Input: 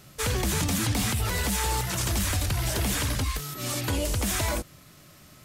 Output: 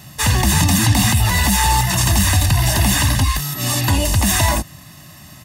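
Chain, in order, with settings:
high-pass filter 59 Hz
comb filter 1.1 ms, depth 79%
level +9 dB

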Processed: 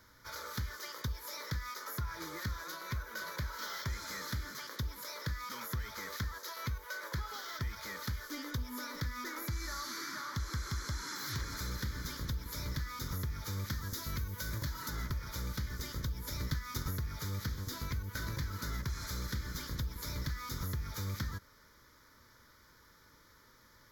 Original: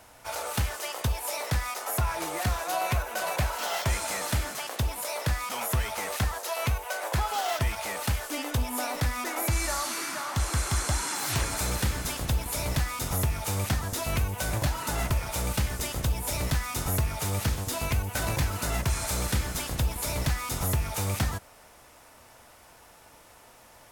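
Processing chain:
0:13.70–0:14.90: high-shelf EQ 5,600 Hz +6.5 dB
downward compressor, threshold −28 dBFS, peak gain reduction 7 dB
0:16.26–0:16.92: transient designer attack +6 dB, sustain −2 dB
phaser with its sweep stopped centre 2,700 Hz, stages 6
level −4.5 dB

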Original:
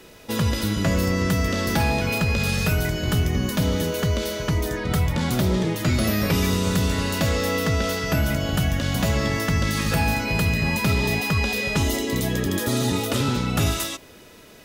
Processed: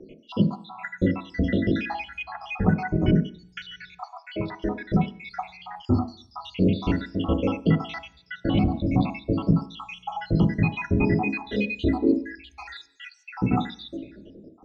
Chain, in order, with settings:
time-frequency cells dropped at random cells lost 82%
low-pass filter 3,400 Hz 24 dB per octave
hollow resonant body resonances 340/770 Hz, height 11 dB, ringing for 45 ms
on a send: low-shelf EQ 250 Hz +12 dB + convolution reverb RT60 0.50 s, pre-delay 3 ms, DRR 8.5 dB

